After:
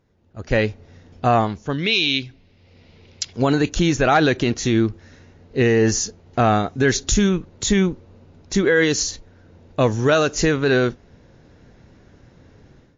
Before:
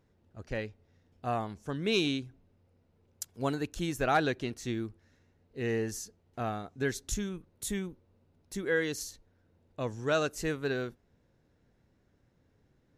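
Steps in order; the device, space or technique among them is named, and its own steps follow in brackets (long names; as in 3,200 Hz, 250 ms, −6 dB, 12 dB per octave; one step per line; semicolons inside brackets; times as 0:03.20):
0:01.78–0:03.33: flat-topped bell 3,200 Hz +12.5 dB
low-bitrate web radio (automatic gain control gain up to 16 dB; brickwall limiter −11.5 dBFS, peak gain reduction 11 dB; level +4.5 dB; MP3 40 kbit/s 16,000 Hz)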